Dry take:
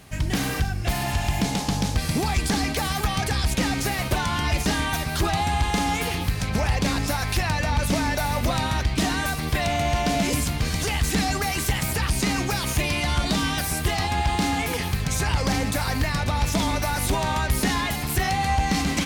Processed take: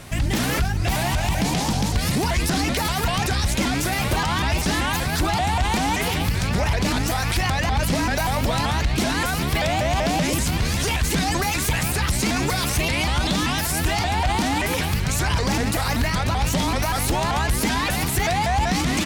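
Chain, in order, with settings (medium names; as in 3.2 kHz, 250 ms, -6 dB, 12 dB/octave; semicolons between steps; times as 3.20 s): peak limiter -22 dBFS, peak gain reduction 7.5 dB; vibrato with a chosen wave saw up 5.2 Hz, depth 250 cents; trim +8 dB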